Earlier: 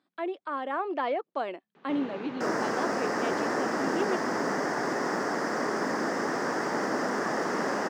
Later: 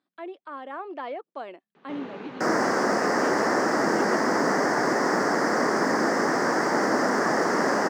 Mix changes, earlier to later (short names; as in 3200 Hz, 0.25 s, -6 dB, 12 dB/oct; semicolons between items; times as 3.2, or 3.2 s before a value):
speech -5.0 dB; second sound +6.5 dB